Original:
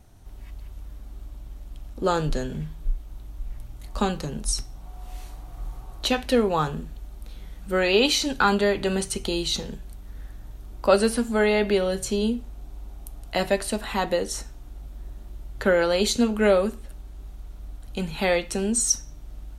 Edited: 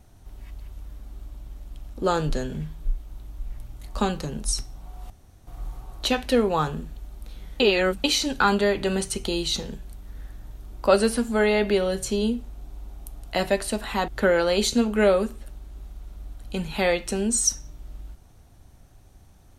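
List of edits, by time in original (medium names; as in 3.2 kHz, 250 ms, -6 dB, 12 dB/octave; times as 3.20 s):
5.10–5.47 s: room tone
7.60–8.04 s: reverse
14.08–15.51 s: delete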